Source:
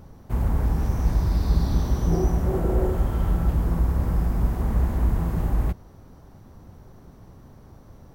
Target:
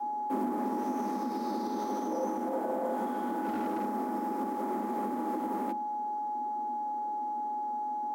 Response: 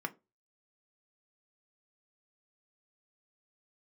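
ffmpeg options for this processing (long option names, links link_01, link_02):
-filter_complex "[0:a]aeval=exprs='val(0)+0.0316*sin(2*PI*690*n/s)':channel_layout=same,asplit=2[link_01][link_02];[1:a]atrim=start_sample=2205,asetrate=24255,aresample=44100,lowshelf=frequency=330:gain=8.5[link_03];[link_02][link_03]afir=irnorm=-1:irlink=0,volume=-8.5dB[link_04];[link_01][link_04]amix=inputs=2:normalize=0,afreqshift=150,asplit=3[link_05][link_06][link_07];[link_05]afade=type=out:start_time=3.43:duration=0.02[link_08];[link_06]asoftclip=type=hard:threshold=-14.5dB,afade=type=in:start_time=3.43:duration=0.02,afade=type=out:start_time=3.84:duration=0.02[link_09];[link_07]afade=type=in:start_time=3.84:duration=0.02[link_10];[link_08][link_09][link_10]amix=inputs=3:normalize=0,highpass=frequency=150:poles=1,alimiter=limit=-13.5dB:level=0:latency=1:release=81,adynamicequalizer=threshold=0.02:dfrequency=230:dqfactor=0.77:tfrequency=230:tqfactor=0.77:attack=5:release=100:ratio=0.375:range=3:mode=cutabove:tftype=bell,volume=-7.5dB"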